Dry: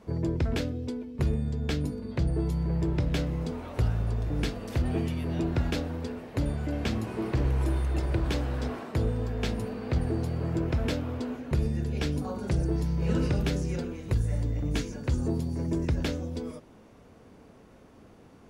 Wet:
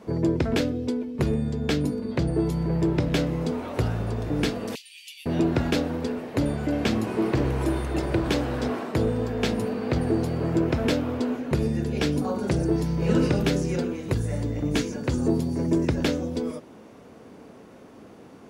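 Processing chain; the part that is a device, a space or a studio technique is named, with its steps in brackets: filter by subtraction (in parallel: LPF 280 Hz 12 dB/oct + phase invert); 4.75–5.26 on the sum: steep high-pass 2500 Hz 48 dB/oct; gain +6 dB

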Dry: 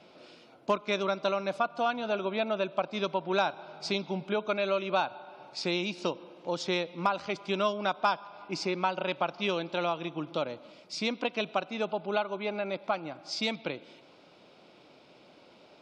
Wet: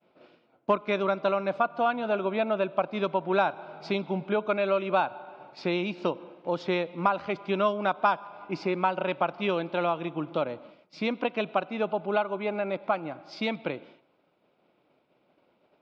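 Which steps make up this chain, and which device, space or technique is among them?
hearing-loss simulation (LPF 2400 Hz 12 dB/oct; expander -47 dBFS); gain +3.5 dB

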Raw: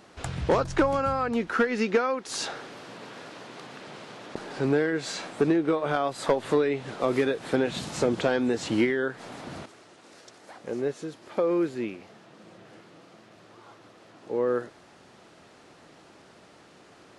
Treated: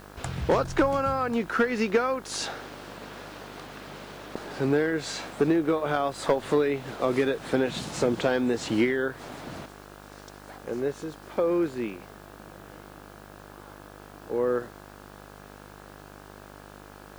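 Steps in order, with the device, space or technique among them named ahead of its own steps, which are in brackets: video cassette with head-switching buzz (buzz 50 Hz, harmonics 34, -48 dBFS -2 dB/oct; white noise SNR 31 dB)

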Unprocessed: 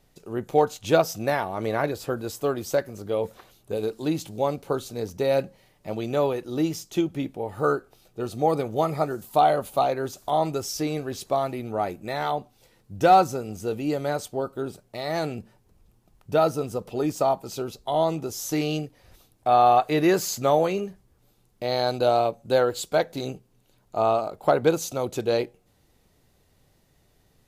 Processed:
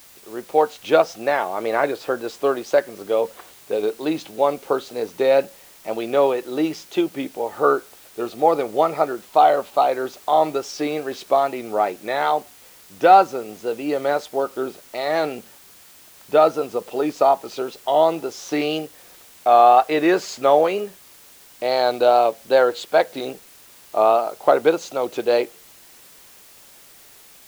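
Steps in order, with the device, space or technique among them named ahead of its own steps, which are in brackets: dictaphone (BPF 360–3700 Hz; AGC gain up to 7.5 dB; wow and flutter; white noise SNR 27 dB)

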